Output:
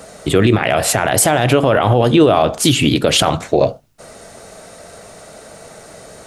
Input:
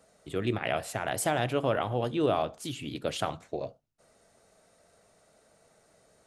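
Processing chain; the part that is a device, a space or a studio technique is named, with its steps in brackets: loud club master (compression 1.5:1, threshold -34 dBFS, peak gain reduction 5 dB; hard clipper -18.5 dBFS, distortion -35 dB; loudness maximiser +26.5 dB); trim -1 dB

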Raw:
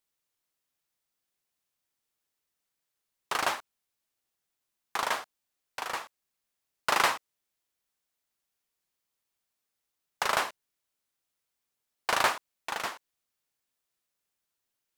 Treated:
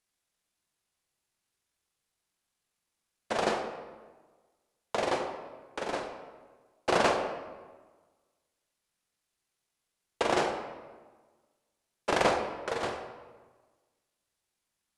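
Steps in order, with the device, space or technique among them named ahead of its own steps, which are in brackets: monster voice (pitch shift -10 st; bass shelf 140 Hz +4 dB; reverberation RT60 1.4 s, pre-delay 3 ms, DRR 3.5 dB)

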